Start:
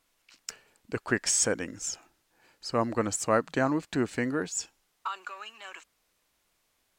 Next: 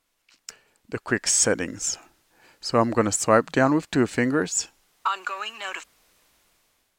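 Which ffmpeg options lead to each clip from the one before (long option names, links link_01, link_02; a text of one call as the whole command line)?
ffmpeg -i in.wav -af "dynaudnorm=framelen=520:gausssize=5:maxgain=15dB,volume=-1dB" out.wav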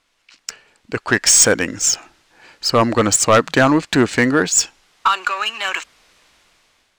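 ffmpeg -i in.wav -af "adynamicsmooth=sensitivity=5.5:basefreq=6100,tiltshelf=frequency=1200:gain=-3.5,aeval=exprs='0.75*(cos(1*acos(clip(val(0)/0.75,-1,1)))-cos(1*PI/2))+0.266*(cos(5*acos(clip(val(0)/0.75,-1,1)))-cos(5*PI/2))+0.0299*(cos(6*acos(clip(val(0)/0.75,-1,1)))-cos(6*PI/2))':channel_layout=same,volume=1dB" out.wav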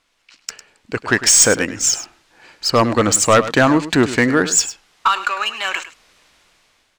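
ffmpeg -i in.wav -af "aecho=1:1:103:0.2" out.wav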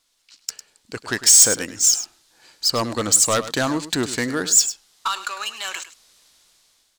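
ffmpeg -i in.wav -af "aexciter=amount=3.3:drive=6.2:freq=3500,volume=-9dB" out.wav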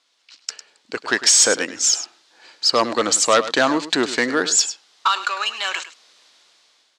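ffmpeg -i in.wav -af "highpass=320,lowpass=4700,volume=6dB" out.wav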